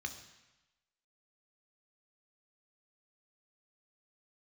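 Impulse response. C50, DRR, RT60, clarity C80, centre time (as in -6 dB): 10.0 dB, 5.5 dB, 1.0 s, 12.0 dB, 14 ms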